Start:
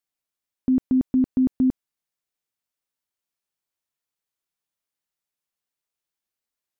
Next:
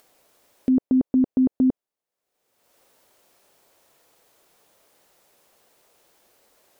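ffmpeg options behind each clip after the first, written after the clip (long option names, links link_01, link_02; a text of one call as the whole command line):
ffmpeg -i in.wav -af "equalizer=frequency=530:width_type=o:width=1.8:gain=13.5,acompressor=mode=upward:threshold=-33dB:ratio=2.5,volume=-5dB" out.wav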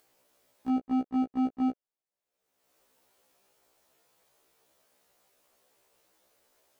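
ffmpeg -i in.wav -af "volume=21dB,asoftclip=hard,volume=-21dB,afftfilt=real='re*1.73*eq(mod(b,3),0)':imag='im*1.73*eq(mod(b,3),0)':win_size=2048:overlap=0.75,volume=-5.5dB" out.wav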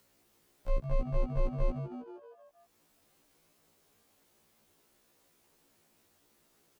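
ffmpeg -i in.wav -filter_complex "[0:a]asplit=7[link_01][link_02][link_03][link_04][link_05][link_06][link_07];[link_02]adelay=158,afreqshift=110,volume=-11.5dB[link_08];[link_03]adelay=316,afreqshift=220,volume=-16.7dB[link_09];[link_04]adelay=474,afreqshift=330,volume=-21.9dB[link_10];[link_05]adelay=632,afreqshift=440,volume=-27.1dB[link_11];[link_06]adelay=790,afreqshift=550,volume=-32.3dB[link_12];[link_07]adelay=948,afreqshift=660,volume=-37.5dB[link_13];[link_01][link_08][link_09][link_10][link_11][link_12][link_13]amix=inputs=7:normalize=0,afreqshift=-230" out.wav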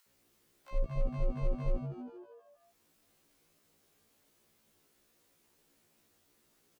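ffmpeg -i in.wav -filter_complex "[0:a]acrossover=split=820[link_01][link_02];[link_01]adelay=60[link_03];[link_03][link_02]amix=inputs=2:normalize=0,volume=-1.5dB" out.wav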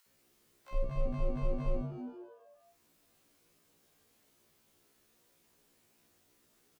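ffmpeg -i in.wav -filter_complex "[0:a]asplit=2[link_01][link_02];[link_02]adelay=48,volume=-6dB[link_03];[link_01][link_03]amix=inputs=2:normalize=0" out.wav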